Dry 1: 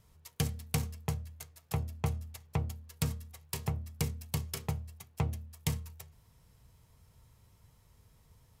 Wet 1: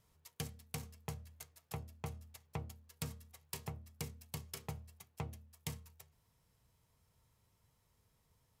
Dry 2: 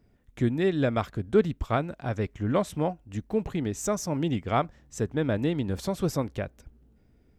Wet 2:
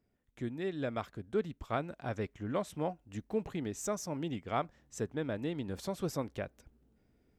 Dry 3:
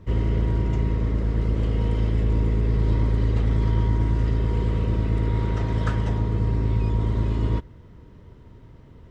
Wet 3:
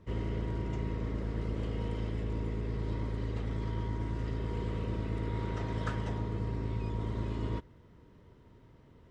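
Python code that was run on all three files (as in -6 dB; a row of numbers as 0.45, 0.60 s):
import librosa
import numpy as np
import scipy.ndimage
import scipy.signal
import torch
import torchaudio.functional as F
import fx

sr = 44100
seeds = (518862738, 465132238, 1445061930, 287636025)

y = fx.rider(x, sr, range_db=4, speed_s=0.5)
y = fx.low_shelf(y, sr, hz=130.0, db=-8.0)
y = F.gain(torch.from_numpy(y), -7.5).numpy()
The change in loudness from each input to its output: -10.5, -9.0, -12.0 LU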